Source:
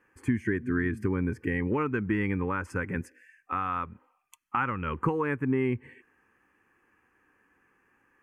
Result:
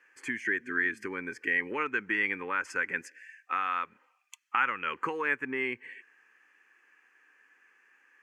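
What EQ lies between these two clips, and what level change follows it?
high-pass filter 420 Hz 12 dB per octave
flat-topped bell 3,400 Hz +10.5 dB 2.6 octaves
−3.0 dB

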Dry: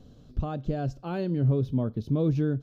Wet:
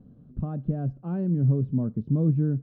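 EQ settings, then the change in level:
Chebyshev low-pass filter 1,400 Hz, order 2
parametric band 180 Hz +15 dB 1.7 octaves
−8.5 dB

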